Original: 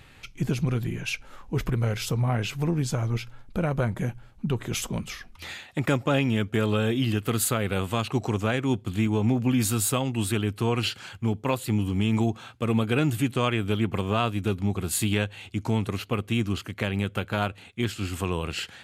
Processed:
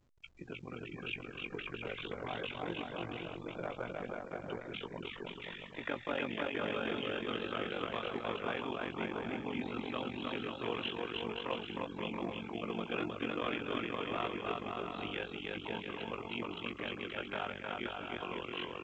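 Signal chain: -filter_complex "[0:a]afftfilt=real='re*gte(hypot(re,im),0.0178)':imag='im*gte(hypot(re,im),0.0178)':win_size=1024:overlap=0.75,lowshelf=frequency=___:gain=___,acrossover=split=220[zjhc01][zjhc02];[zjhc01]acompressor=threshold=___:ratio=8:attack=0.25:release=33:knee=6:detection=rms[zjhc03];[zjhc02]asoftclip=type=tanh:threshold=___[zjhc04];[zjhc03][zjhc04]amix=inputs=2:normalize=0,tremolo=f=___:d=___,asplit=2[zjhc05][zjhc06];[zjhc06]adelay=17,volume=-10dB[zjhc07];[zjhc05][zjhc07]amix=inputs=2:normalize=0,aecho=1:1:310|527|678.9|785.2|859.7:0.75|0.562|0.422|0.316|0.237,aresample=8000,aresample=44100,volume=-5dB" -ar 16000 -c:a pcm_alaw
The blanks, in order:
270, -9, -49dB, -20.5dB, 46, 0.974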